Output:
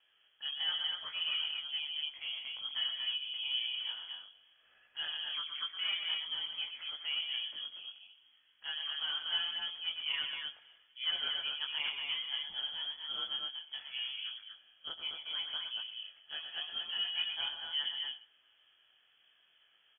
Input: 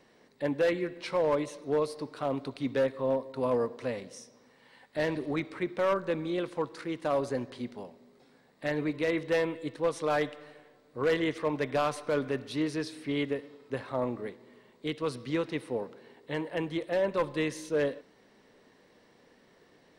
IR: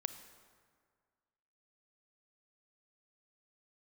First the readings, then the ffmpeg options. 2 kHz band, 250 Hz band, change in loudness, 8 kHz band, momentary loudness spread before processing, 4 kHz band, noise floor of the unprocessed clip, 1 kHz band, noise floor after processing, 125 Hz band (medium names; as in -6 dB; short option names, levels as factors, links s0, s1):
-4.5 dB, under -35 dB, -4.0 dB, under -30 dB, 11 LU, +14.0 dB, -62 dBFS, -15.5 dB, -70 dBFS, under -30 dB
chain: -af "lowpass=f=3000:t=q:w=0.5098,lowpass=f=3000:t=q:w=0.6013,lowpass=f=3000:t=q:w=0.9,lowpass=f=3000:t=q:w=2.563,afreqshift=-3500,aecho=1:1:119.5|236.2:0.447|0.631,flanger=delay=18:depth=3.2:speed=0.82,volume=0.473"